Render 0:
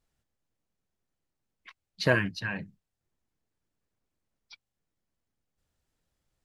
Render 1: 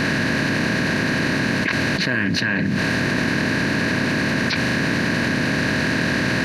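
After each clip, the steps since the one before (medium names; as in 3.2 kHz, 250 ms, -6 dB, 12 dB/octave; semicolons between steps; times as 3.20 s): spectral levelling over time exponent 0.4; graphic EQ 250/500/2000 Hz +11/-5/+9 dB; level flattener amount 100%; trim -6.5 dB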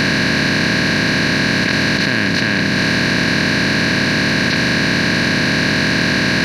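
spectral levelling over time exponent 0.2; trim -1 dB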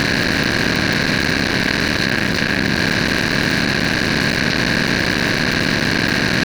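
cycle switcher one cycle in 3, muted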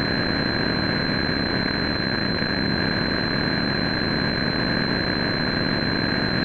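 class-D stage that switches slowly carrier 4.1 kHz; trim -4.5 dB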